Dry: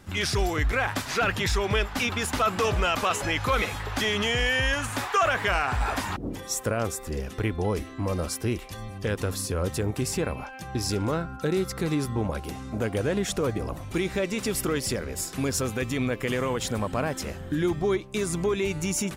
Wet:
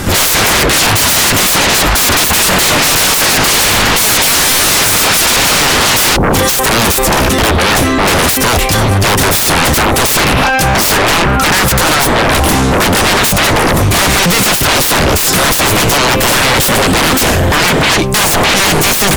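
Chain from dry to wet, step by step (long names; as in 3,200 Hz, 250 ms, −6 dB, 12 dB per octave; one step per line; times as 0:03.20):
high-shelf EQ 6,700 Hz +5 dB
in parallel at +1 dB: brickwall limiter −22 dBFS, peak gain reduction 8.5 dB
on the sum: sine wavefolder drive 19 dB, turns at −10.5 dBFS
level +4 dB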